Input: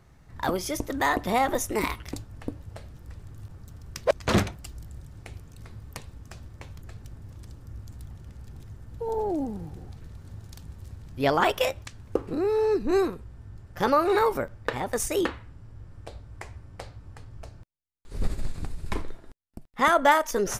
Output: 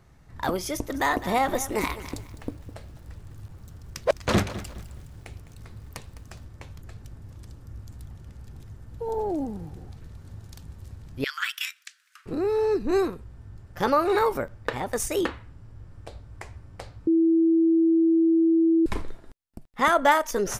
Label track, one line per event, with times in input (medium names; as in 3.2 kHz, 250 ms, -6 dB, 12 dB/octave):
0.730000	6.430000	bit-crushed delay 207 ms, feedback 35%, word length 8-bit, level -14 dB
11.240000	12.260000	steep high-pass 1.4 kHz 48 dB/octave
17.070000	18.860000	bleep 328 Hz -16.5 dBFS